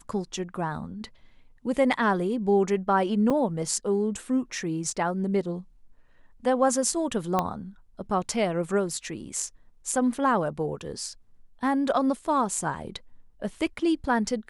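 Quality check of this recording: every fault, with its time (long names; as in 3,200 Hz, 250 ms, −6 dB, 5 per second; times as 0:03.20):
0:03.30: drop-out 4.8 ms
0:07.39: click −11 dBFS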